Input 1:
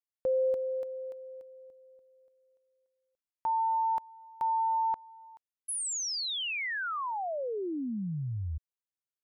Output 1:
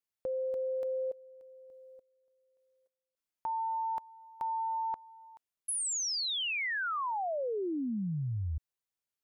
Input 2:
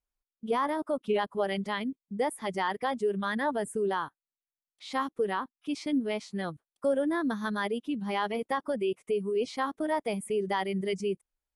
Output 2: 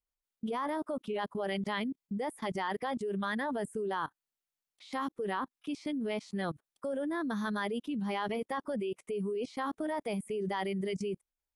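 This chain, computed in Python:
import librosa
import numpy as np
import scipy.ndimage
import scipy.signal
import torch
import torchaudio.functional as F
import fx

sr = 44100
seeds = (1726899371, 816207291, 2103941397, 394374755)

y = fx.level_steps(x, sr, step_db=20)
y = y * librosa.db_to_amplitude(6.5)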